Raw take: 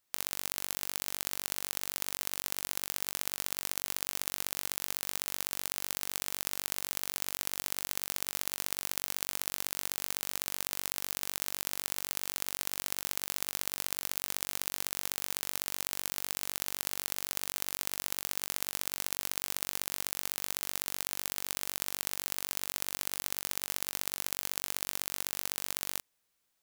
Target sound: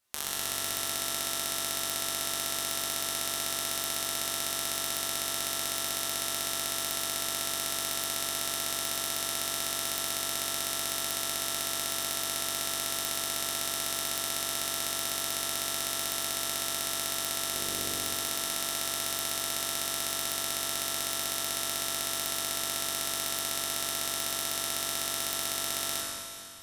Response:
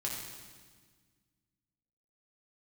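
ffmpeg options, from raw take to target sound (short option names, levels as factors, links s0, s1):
-filter_complex "[0:a]asettb=1/sr,asplit=3[s0][s1][s2];[s0]atrim=end=17.534[s3];[s1]atrim=start=17.53:end=17.93,asetpts=PTS-STARTPTS,afade=t=in:d=0.004:c=qsin,afade=t=out:st=0.396:d=0.004:c=qsin,lowshelf=f=600:t=q:w=1.5:g=6[s4];[s2]atrim=start=17.926[s5];[s3][s4]acrossfade=d=0.004:c1=hsin:c2=qsin[s6];[s6][s5]acrossfade=d=0.004:c1=qsin:c2=hsin[s7];[1:a]atrim=start_sample=2205,asetrate=26901,aresample=44100[s8];[s7][s8]afir=irnorm=-1:irlink=0"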